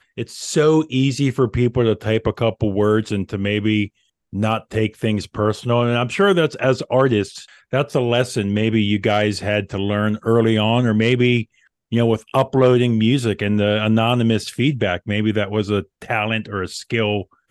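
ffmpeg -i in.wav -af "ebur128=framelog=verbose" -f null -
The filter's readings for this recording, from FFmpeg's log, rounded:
Integrated loudness:
  I:         -18.9 LUFS
  Threshold: -29.1 LUFS
Loudness range:
  LRA:         3.2 LU
  Threshold: -38.9 LUFS
  LRA low:   -20.8 LUFS
  LRA high:  -17.6 LUFS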